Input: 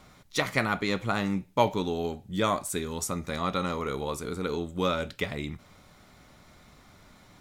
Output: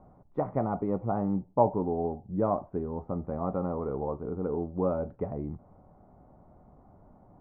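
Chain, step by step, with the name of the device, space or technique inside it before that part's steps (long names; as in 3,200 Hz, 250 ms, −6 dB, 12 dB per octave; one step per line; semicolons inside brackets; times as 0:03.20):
under water (low-pass filter 890 Hz 24 dB per octave; parametric band 750 Hz +4.5 dB 0.44 octaves)
0:00.60–0:01.13: notch filter 1,600 Hz, Q 5.4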